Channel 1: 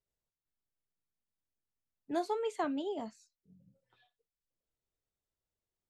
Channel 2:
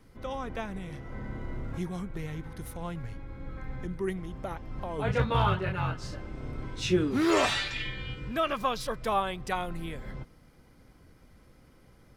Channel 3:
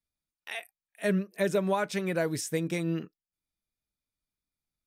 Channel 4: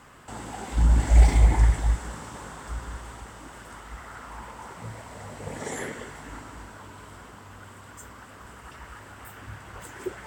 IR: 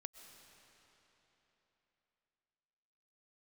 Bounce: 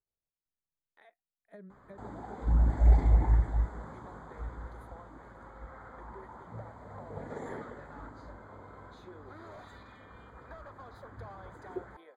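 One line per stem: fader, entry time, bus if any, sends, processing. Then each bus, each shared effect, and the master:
-5.0 dB, 0.00 s, bus A, no send, dry
-1.5 dB, 2.15 s, bus A, no send, HPF 490 Hz 24 dB/oct; overloaded stage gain 32.5 dB
-14.5 dB, 0.50 s, bus A, no send, dry
-5.5 dB, 1.70 s, no bus, no send, dry
bus A: 0.0 dB, transient shaper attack +3 dB, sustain -4 dB; compressor 6:1, threshold -47 dBFS, peak gain reduction 15.5 dB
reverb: off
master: running mean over 16 samples

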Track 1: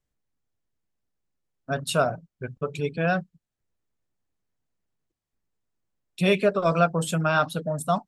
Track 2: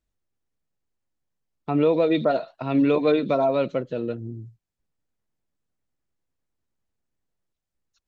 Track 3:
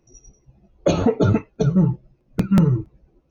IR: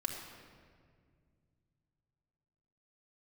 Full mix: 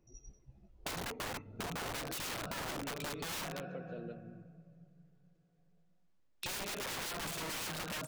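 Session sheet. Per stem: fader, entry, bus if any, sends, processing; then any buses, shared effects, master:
0.0 dB, 0.25 s, bus A, send -9 dB, LPF 5800 Hz 12 dB/oct; notches 50/100/150/200/250/300/350 Hz
-17.0 dB, 0.00 s, bus A, send -19 dB, bell 130 Hz -14.5 dB 0.48 oct
-10.5 dB, 0.00 s, no bus, send -22 dB, low shelf 130 Hz +5 dB
bus A: 0.0 dB, soft clip -10 dBFS, distortion -24 dB; compressor 10:1, threshold -26 dBFS, peak gain reduction 10 dB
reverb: on, RT60 2.0 s, pre-delay 3 ms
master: wrapped overs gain 26 dB; compressor 6:1, threshold -39 dBFS, peak gain reduction 9.5 dB

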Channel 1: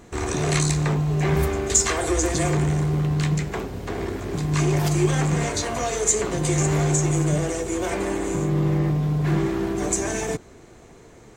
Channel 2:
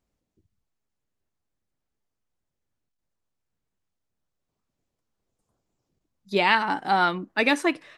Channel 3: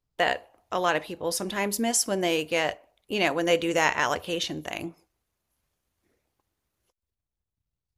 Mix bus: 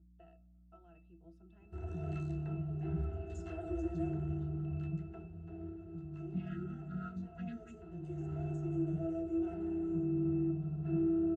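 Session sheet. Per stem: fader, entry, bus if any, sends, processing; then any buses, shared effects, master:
-4.0 dB, 1.60 s, no send, auto duck -8 dB, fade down 1.65 s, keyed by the second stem
0.0 dB, 0.00 s, no send, chord vocoder major triad, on F#3; FFT band-reject 270–1200 Hz; hum 60 Hz, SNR 13 dB
-15.0 dB, 0.00 s, no send, compressor 5:1, threshold -27 dBFS, peak gain reduction 9.5 dB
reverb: off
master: octave resonator E, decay 0.23 s

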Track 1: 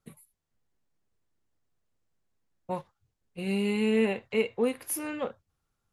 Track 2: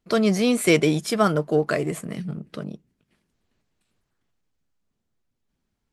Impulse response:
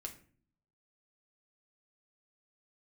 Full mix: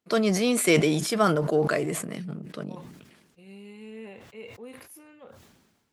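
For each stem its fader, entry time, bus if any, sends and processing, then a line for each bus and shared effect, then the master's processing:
-17.5 dB, 0.00 s, no send, dry
-2.5 dB, 0.00 s, send -22.5 dB, HPF 200 Hz 6 dB/oct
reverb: on, RT60 0.50 s, pre-delay 6 ms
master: HPF 51 Hz; sustainer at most 45 dB/s

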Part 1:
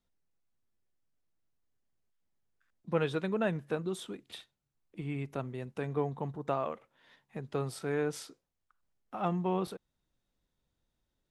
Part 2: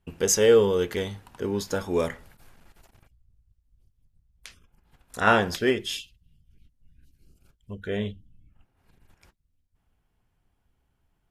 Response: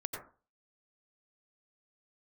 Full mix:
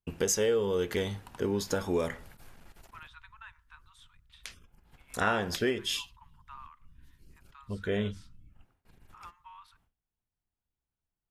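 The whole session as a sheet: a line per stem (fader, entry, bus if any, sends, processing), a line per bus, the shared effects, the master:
-9.0 dB, 0.00 s, send -23 dB, Chebyshev high-pass 940 Hz, order 6; high shelf 5600 Hz -11 dB
+1.0 dB, 0.00 s, no send, compressor 4:1, threshold -27 dBFS, peak gain reduction 12 dB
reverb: on, RT60 0.35 s, pre-delay 82 ms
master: gate with hold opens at -56 dBFS

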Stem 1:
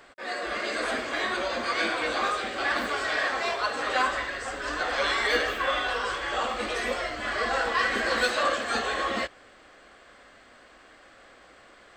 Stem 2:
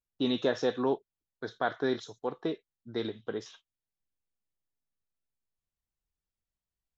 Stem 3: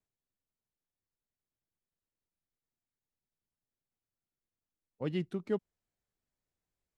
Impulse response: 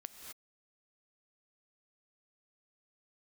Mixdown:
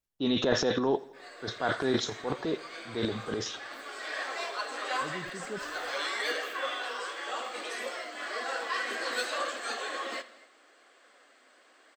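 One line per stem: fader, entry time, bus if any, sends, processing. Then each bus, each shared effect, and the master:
-5.0 dB, 0.95 s, send -10 dB, echo send -17.5 dB, steep high-pass 260 Hz 36 dB/oct; high shelf 5200 Hz +7.5 dB; flange 0.91 Hz, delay 0.8 ms, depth 7.8 ms, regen +76%; auto duck -14 dB, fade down 1.55 s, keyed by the second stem
+2.0 dB, 0.00 s, no send, echo send -21 dB, transient shaper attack -5 dB, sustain +11 dB
-5.0 dB, 0.00 s, no send, no echo send, tone controls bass -8 dB, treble -1 dB; sustainer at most 71 dB/s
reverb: on, pre-delay 3 ms
echo: feedback echo 84 ms, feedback 55%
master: dry

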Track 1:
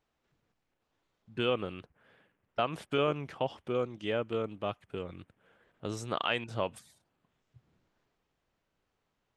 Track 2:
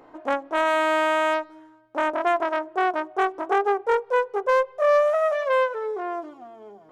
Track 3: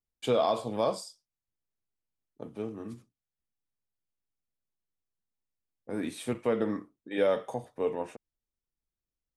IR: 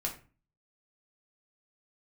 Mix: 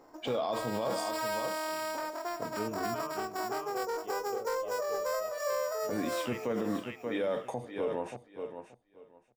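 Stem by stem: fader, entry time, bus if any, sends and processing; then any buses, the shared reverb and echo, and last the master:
-13.0 dB, 0.00 s, bus A, no send, echo send -10.5 dB, HPF 110 Hz; step gate "xxxxxx..x" 70 bpm; LFO bell 0.24 Hz 480–2100 Hz +16 dB
-7.5 dB, 0.00 s, bus A, send -19.5 dB, echo send -6.5 dB, sample-rate reducer 6300 Hz, jitter 0%
+1.5 dB, 0.00 s, no bus, no send, echo send -11.5 dB, low-pass opened by the level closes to 2000 Hz, open at -28.5 dBFS
bus A: 0.0 dB, high shelf 6300 Hz -10 dB; compressor 2.5:1, threshold -40 dBFS, peak gain reduction 11.5 dB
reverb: on, RT60 0.35 s, pre-delay 5 ms
echo: feedback echo 0.579 s, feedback 18%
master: limiter -23.5 dBFS, peak gain reduction 10 dB

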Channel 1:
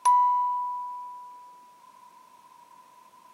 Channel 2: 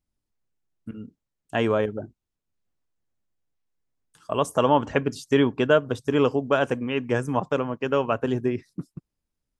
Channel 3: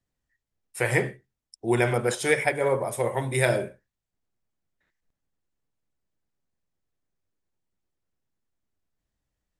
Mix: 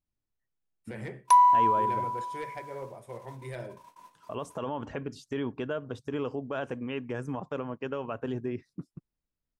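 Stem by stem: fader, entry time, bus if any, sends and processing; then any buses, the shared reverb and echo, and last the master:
+2.0 dB, 1.25 s, no bus, no send, gate -52 dBFS, range -25 dB
-6.5 dB, 0.00 s, bus A, no send, dry
-18.5 dB, 0.10 s, bus A, no send, low shelf 470 Hz +5 dB; hard clip -12.5 dBFS, distortion -19 dB
bus A: 0.0 dB, high shelf 6500 Hz -11 dB; limiter -23.5 dBFS, peak gain reduction 10 dB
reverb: off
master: dry

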